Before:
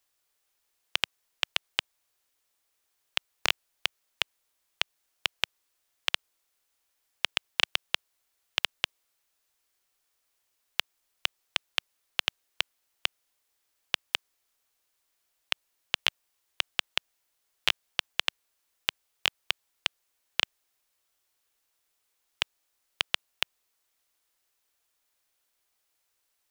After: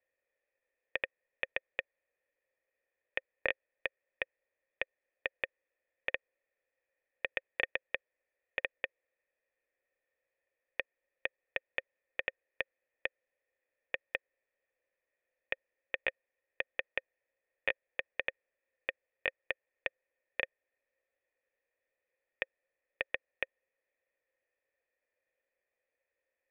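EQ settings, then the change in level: cascade formant filter e; +10.5 dB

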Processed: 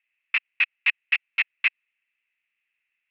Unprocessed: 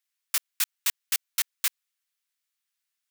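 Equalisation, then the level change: resonant low-pass 2.6 kHz, resonance Q 14; distance through air 300 m; peaking EQ 2 kHz +10 dB 0.37 oct; 0.0 dB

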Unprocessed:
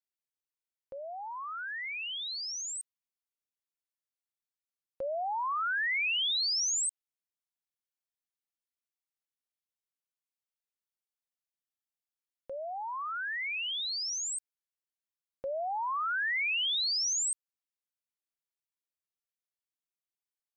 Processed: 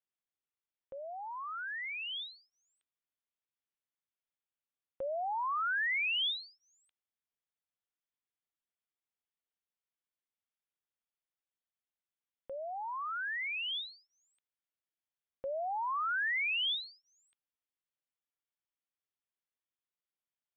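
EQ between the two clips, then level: elliptic low-pass 3.5 kHz; -1.5 dB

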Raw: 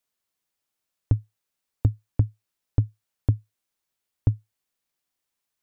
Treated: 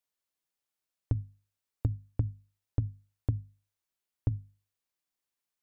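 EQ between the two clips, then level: hum notches 50/100/150/200/250 Hz; -6.5 dB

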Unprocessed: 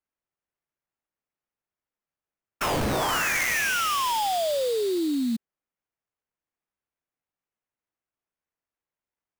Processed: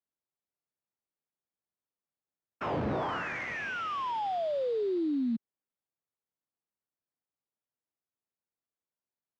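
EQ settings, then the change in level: high-pass 90 Hz 12 dB/octave; tape spacing loss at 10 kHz 41 dB; -3.0 dB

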